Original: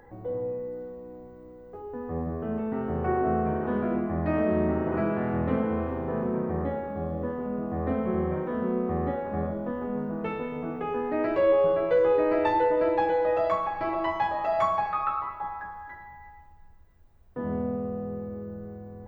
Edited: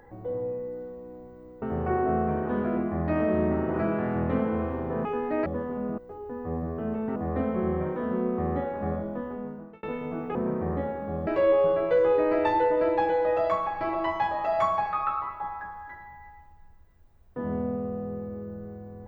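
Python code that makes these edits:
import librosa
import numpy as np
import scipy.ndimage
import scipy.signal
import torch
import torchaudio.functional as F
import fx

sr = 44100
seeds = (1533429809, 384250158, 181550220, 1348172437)

y = fx.edit(x, sr, fx.move(start_s=1.62, length_s=1.18, to_s=7.67),
    fx.swap(start_s=6.23, length_s=0.92, other_s=10.86, other_length_s=0.41),
    fx.fade_out_span(start_s=9.29, length_s=1.05, curve='qsin'), tone=tone)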